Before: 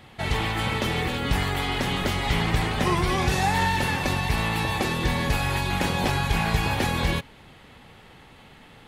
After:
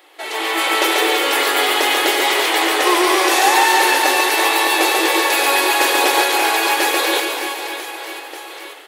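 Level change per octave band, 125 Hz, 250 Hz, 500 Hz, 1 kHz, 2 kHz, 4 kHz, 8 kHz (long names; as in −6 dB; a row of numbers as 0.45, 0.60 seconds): below −40 dB, +4.0 dB, +11.5 dB, +11.0 dB, +11.5 dB, +12.5 dB, +16.0 dB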